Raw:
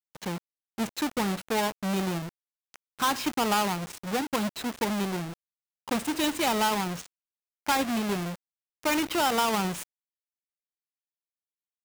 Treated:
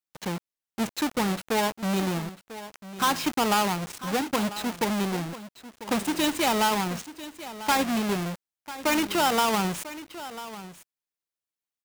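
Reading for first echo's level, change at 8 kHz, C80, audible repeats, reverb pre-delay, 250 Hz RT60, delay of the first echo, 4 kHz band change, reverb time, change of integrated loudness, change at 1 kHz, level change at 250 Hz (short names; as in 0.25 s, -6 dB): -15.0 dB, +2.0 dB, none, 1, none, none, 0.995 s, +2.0 dB, none, +2.0 dB, +2.0 dB, +2.0 dB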